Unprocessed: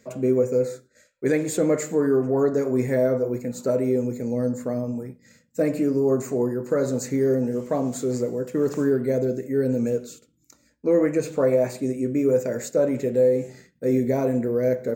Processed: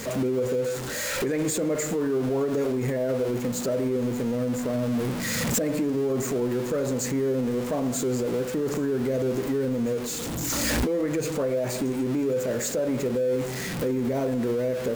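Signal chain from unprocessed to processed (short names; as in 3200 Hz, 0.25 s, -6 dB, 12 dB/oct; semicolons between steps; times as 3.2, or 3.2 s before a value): zero-crossing step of -29.5 dBFS; recorder AGC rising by 16 dB/s; limiter -18 dBFS, peak gain reduction 8 dB; gain -1 dB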